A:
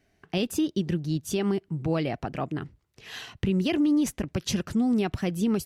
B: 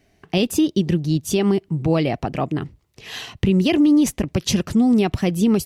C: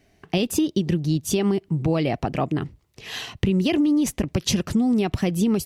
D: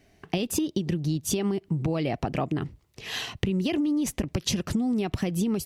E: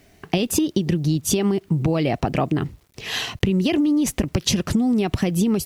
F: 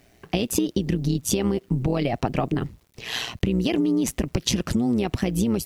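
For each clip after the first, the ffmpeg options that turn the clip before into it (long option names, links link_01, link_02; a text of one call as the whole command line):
ffmpeg -i in.wav -af "equalizer=frequency=1500:width=3.1:gain=-5.5,volume=8dB" out.wav
ffmpeg -i in.wav -af "acompressor=threshold=-17dB:ratio=6" out.wav
ffmpeg -i in.wav -af "acompressor=threshold=-23dB:ratio=6" out.wav
ffmpeg -i in.wav -af "acrusher=bits=10:mix=0:aa=0.000001,volume=6.5dB" out.wav
ffmpeg -i in.wav -af "tremolo=f=120:d=0.667" out.wav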